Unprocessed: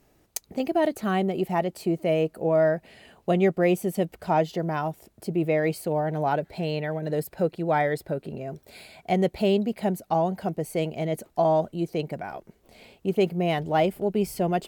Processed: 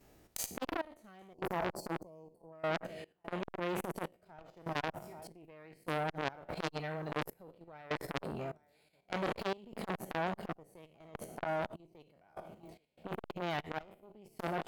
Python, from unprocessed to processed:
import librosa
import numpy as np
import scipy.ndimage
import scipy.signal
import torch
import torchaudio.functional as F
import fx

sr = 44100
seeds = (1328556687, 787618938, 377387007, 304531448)

p1 = fx.spec_trails(x, sr, decay_s=0.53)
p2 = p1 + fx.echo_feedback(p1, sr, ms=828, feedback_pct=53, wet_db=-21.0, dry=0)
p3 = fx.level_steps(p2, sr, step_db=9)
p4 = fx.cheby_harmonics(p3, sr, harmonics=(4, 7), levels_db=(-11, -37), full_scale_db=-10.0)
p5 = fx.spec_box(p4, sr, start_s=1.34, length_s=1.19, low_hz=1100.0, high_hz=4200.0, gain_db=-22)
p6 = fx.step_gate(p5, sr, bpm=74, pattern='xxxx...xxx...xx.', floor_db=-24.0, edge_ms=4.5)
p7 = fx.rider(p6, sr, range_db=4, speed_s=0.5)
p8 = fx.transformer_sat(p7, sr, knee_hz=3200.0)
y = p8 * librosa.db_to_amplitude(-2.5)